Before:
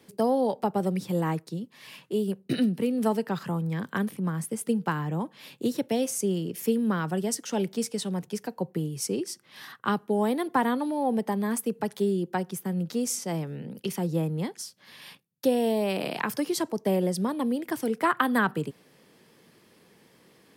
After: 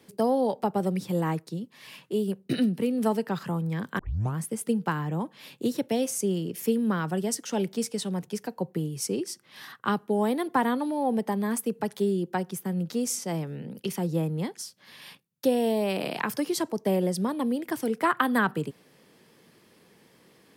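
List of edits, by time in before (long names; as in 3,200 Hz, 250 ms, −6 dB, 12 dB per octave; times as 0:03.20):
0:03.99: tape start 0.38 s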